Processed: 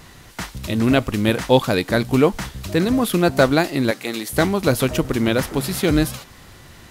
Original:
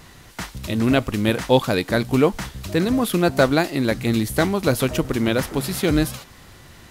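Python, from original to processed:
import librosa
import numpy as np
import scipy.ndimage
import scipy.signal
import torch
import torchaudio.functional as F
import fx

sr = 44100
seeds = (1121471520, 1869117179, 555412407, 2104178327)

y = fx.highpass(x, sr, hz=430.0, slope=12, at=(3.91, 4.33))
y = y * 10.0 ** (1.5 / 20.0)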